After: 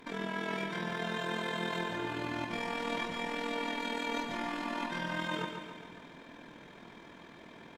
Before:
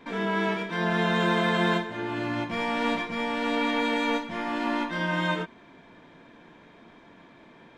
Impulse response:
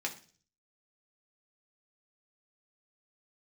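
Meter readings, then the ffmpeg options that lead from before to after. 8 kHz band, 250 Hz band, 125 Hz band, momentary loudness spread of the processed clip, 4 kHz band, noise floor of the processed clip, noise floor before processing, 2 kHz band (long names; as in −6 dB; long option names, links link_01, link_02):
−2.5 dB, −10.5 dB, −11.0 dB, 17 LU, −6.5 dB, −53 dBFS, −53 dBFS, −8.0 dB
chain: -af "areverse,acompressor=threshold=-33dB:ratio=6,areverse,tremolo=f=41:d=0.667,aemphasis=mode=production:type=cd,aecho=1:1:139|278|417|556|695|834|973:0.447|0.255|0.145|0.0827|0.0472|0.0269|0.0153,volume=2dB"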